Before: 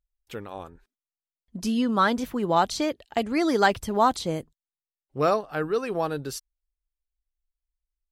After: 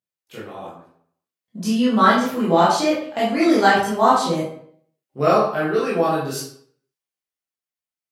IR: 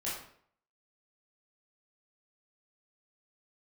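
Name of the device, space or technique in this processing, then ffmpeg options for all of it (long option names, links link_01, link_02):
far laptop microphone: -filter_complex "[1:a]atrim=start_sample=2205[link_01];[0:a][link_01]afir=irnorm=-1:irlink=0,highpass=frequency=120:width=0.5412,highpass=frequency=120:width=1.3066,dynaudnorm=framelen=280:gausssize=9:maxgain=6dB"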